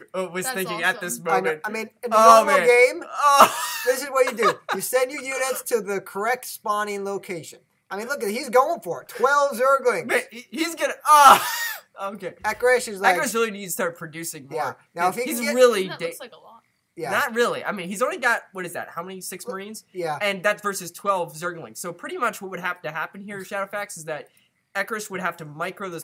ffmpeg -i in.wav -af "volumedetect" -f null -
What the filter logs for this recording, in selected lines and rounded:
mean_volume: -22.6 dB
max_volume: -1.6 dB